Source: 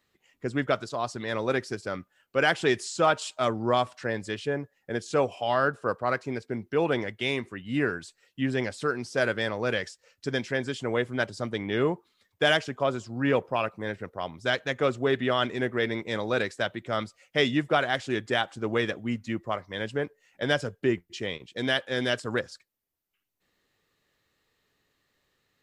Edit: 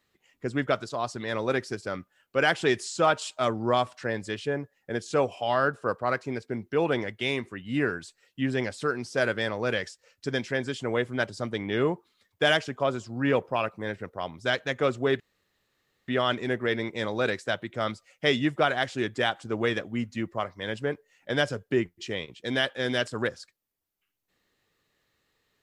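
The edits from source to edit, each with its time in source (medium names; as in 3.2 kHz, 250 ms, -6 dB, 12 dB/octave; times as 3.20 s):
15.20 s: insert room tone 0.88 s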